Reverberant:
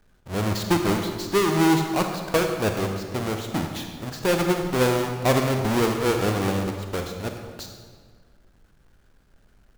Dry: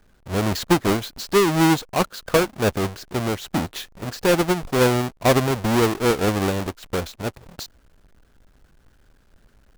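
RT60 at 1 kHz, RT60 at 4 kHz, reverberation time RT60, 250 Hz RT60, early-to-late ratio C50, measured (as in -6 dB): 1.6 s, 1.2 s, 1.7 s, 1.9 s, 5.0 dB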